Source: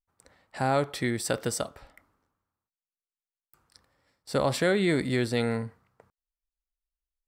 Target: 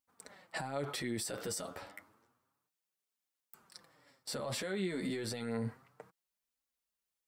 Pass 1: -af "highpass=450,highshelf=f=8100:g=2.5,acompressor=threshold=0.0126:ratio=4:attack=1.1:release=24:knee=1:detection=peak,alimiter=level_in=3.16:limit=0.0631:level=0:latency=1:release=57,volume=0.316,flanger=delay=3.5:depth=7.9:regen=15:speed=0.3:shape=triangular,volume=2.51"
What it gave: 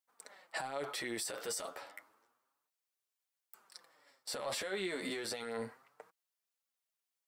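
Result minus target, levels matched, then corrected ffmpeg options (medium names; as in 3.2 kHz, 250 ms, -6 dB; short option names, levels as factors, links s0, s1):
compression: peak gain reduction +14 dB; 125 Hz band -12.5 dB
-af "highpass=140,highshelf=f=8100:g=2.5,alimiter=level_in=3.16:limit=0.0631:level=0:latency=1:release=57,volume=0.316,flanger=delay=3.5:depth=7.9:regen=15:speed=0.3:shape=triangular,volume=2.51"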